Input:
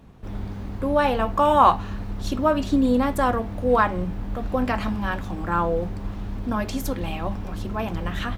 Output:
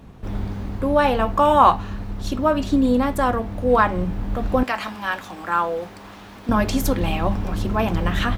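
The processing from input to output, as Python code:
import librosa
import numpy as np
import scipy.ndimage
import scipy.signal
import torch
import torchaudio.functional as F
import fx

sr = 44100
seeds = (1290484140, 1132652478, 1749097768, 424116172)

y = fx.highpass(x, sr, hz=1100.0, slope=6, at=(4.63, 6.49))
y = fx.rider(y, sr, range_db=4, speed_s=2.0)
y = F.gain(torch.from_numpy(y), 2.5).numpy()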